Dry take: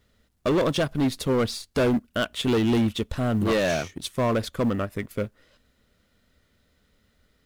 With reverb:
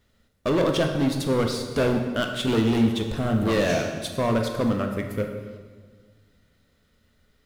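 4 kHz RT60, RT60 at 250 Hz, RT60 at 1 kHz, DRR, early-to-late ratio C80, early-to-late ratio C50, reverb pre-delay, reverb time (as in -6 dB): 1.2 s, 2.0 s, 1.5 s, 3.5 dB, 7.0 dB, 5.5 dB, 7 ms, 1.6 s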